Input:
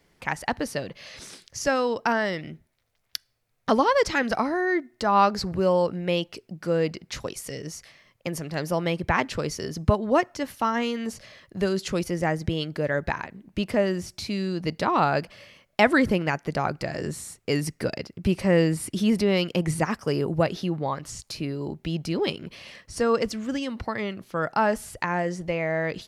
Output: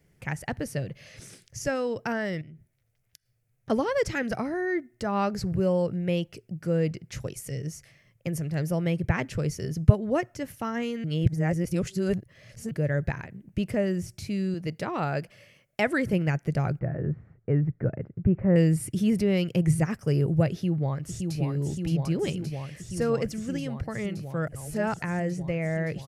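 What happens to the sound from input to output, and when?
2.41–3.70 s: compression, threshold -46 dBFS
11.04–12.71 s: reverse
14.54–16.13 s: bass shelf 170 Hz -11.5 dB
16.79–18.56 s: low-pass 1.6 kHz 24 dB/octave
20.51–21.39 s: echo throw 570 ms, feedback 85%, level -4.5 dB
24.48–25.02 s: reverse
whole clip: graphic EQ 125/250/1000/4000 Hz +11/-4/-11/-10 dB; trim -1 dB

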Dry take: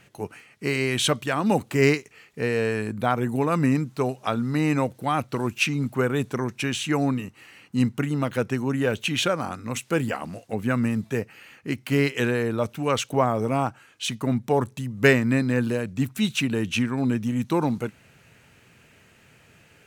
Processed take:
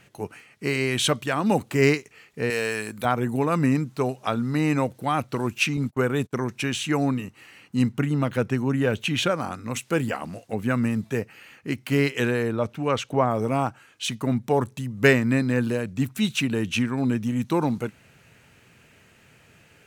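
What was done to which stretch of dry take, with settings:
2.50–3.05 s: tilt EQ +3 dB/octave
5.77–6.33 s: gate -34 dBFS, range -32 dB
7.92–9.31 s: tone controls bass +3 dB, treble -3 dB
12.51–13.31 s: low-pass 3.2 kHz 6 dB/octave

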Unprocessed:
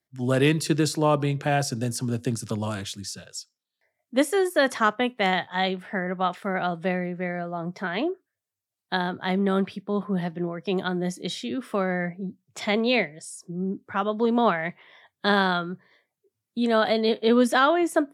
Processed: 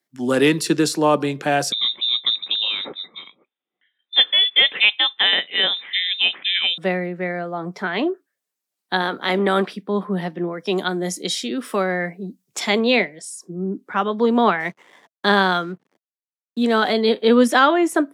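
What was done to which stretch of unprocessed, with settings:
1.72–6.78 s: frequency inversion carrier 3.8 kHz
9.01–9.72 s: spectral peaks clipped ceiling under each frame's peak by 12 dB
10.53–12.79 s: tone controls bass -2 dB, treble +7 dB
14.60–16.93 s: hysteresis with a dead band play -47.5 dBFS
whole clip: high-pass 190 Hz 24 dB/octave; band-stop 650 Hz, Q 12; trim +5.5 dB

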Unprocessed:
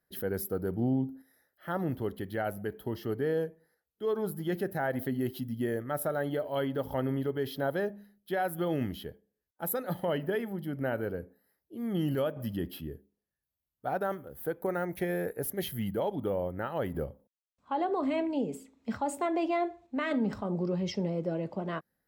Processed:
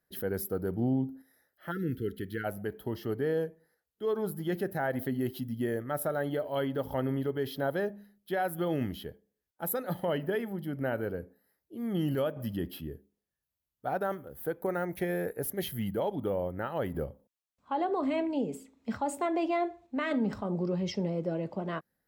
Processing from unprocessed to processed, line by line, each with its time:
1.71–2.44 s: spectral selection erased 510–1300 Hz

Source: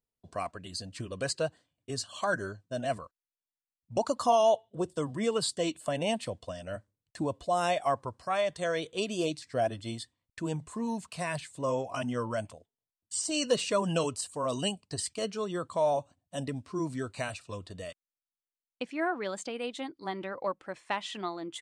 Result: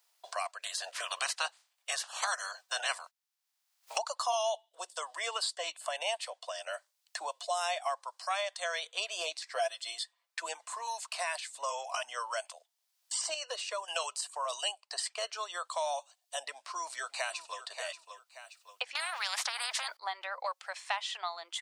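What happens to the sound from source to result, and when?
0.62–3.97 s: spectral peaks clipped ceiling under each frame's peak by 24 dB
9.55–10.66 s: comb 5.9 ms, depth 83%
13.34–13.88 s: ladder high-pass 300 Hz, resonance 45%
16.51–17.65 s: echo throw 580 ms, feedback 15%, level -13.5 dB
18.95–19.97 s: spectrum-flattening compressor 10:1
whole clip: steep high-pass 670 Hz 36 dB/octave; peaking EQ 4.9 kHz +4 dB 0.87 oct; three bands compressed up and down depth 70%

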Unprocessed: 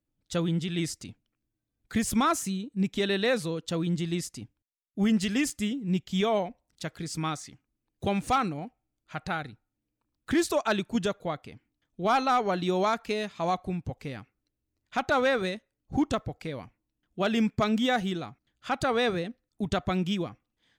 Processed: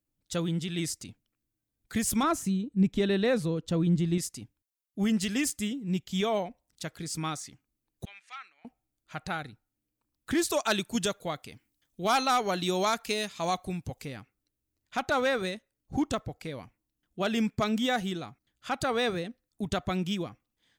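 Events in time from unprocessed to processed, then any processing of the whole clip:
2.23–4.18 s: tilt EQ -2.5 dB/octave
8.05–8.65 s: ladder band-pass 2.3 kHz, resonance 40%
10.52–14.05 s: treble shelf 3 kHz +9 dB
whole clip: treble shelf 6.6 kHz +9 dB; trim -2.5 dB

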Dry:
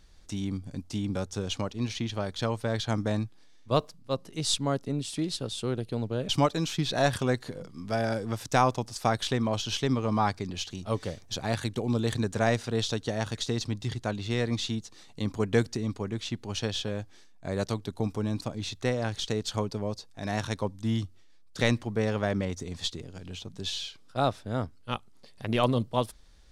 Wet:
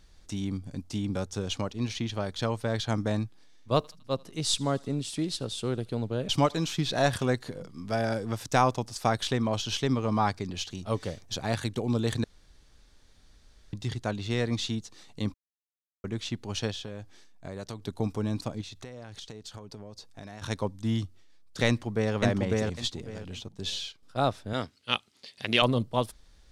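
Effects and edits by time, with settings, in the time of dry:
3.76–7.26 s: thinning echo 79 ms, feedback 67%, high-pass 990 Hz, level -24 dB
12.24–13.73 s: room tone
15.34–16.04 s: mute
16.71–17.82 s: compression 3:1, threshold -36 dBFS
18.61–20.42 s: compression 10:1, threshold -39 dBFS
21.67–22.14 s: echo throw 550 ms, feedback 20%, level -0.5 dB
23.48–24.03 s: gate -46 dBFS, range -8 dB
24.53–25.62 s: frequency weighting D

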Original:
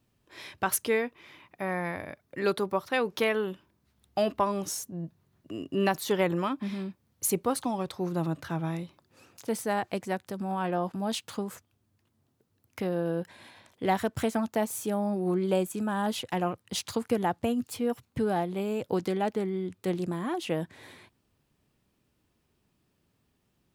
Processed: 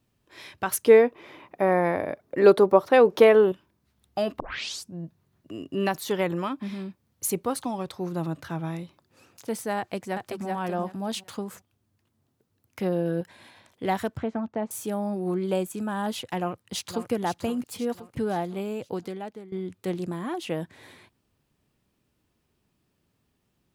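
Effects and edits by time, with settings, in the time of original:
0.87–3.52 s: peaking EQ 490 Hz +13 dB 2.5 oct
4.40 s: tape start 0.54 s
9.78–10.47 s: echo throw 380 ms, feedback 20%, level -4 dB
12.79–13.21 s: comb 5.5 ms
14.17–14.71 s: tape spacing loss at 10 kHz 36 dB
16.38–17.11 s: echo throw 520 ms, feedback 50%, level -9.5 dB
18.58–19.52 s: fade out, to -17 dB

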